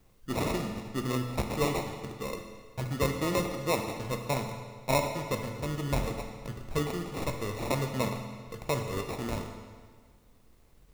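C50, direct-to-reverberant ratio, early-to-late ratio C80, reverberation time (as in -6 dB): 6.0 dB, 4.0 dB, 7.0 dB, 1.7 s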